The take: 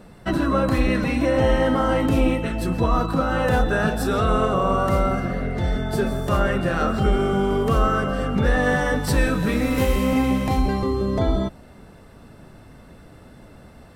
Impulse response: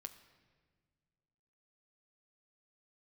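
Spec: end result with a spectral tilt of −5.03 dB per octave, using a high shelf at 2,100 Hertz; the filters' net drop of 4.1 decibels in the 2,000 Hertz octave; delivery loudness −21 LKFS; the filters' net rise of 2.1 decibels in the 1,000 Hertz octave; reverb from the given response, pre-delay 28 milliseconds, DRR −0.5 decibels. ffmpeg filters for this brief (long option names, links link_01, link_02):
-filter_complex "[0:a]equalizer=frequency=1000:width_type=o:gain=5.5,equalizer=frequency=2000:width_type=o:gain=-5.5,highshelf=frequency=2100:gain=-4,asplit=2[link_01][link_02];[1:a]atrim=start_sample=2205,adelay=28[link_03];[link_02][link_03]afir=irnorm=-1:irlink=0,volume=5.5dB[link_04];[link_01][link_04]amix=inputs=2:normalize=0,volume=-3dB"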